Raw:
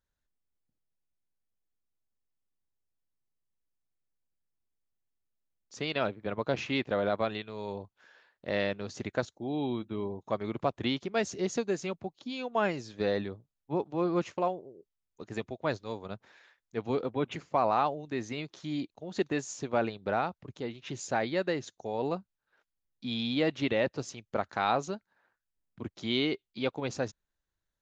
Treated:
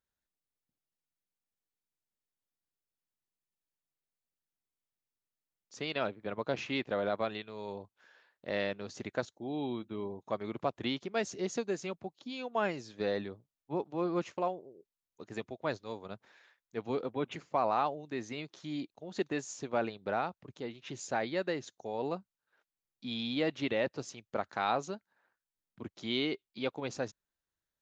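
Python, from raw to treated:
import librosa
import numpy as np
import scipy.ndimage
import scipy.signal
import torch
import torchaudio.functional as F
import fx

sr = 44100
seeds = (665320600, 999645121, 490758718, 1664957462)

y = fx.low_shelf(x, sr, hz=78.0, db=-11.5)
y = y * 10.0 ** (-3.0 / 20.0)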